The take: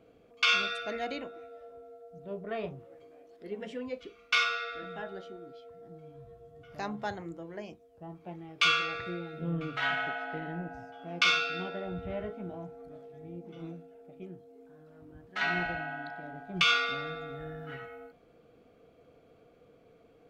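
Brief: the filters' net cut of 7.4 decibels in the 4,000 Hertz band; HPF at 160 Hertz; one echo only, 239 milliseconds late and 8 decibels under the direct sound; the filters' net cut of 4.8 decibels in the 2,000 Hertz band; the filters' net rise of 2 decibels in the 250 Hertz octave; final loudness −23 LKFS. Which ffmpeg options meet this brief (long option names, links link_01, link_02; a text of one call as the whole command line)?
ffmpeg -i in.wav -af "highpass=160,equalizer=frequency=250:width_type=o:gain=5,equalizer=frequency=2000:width_type=o:gain=-5,equalizer=frequency=4000:width_type=o:gain=-7.5,aecho=1:1:239:0.398,volume=13dB" out.wav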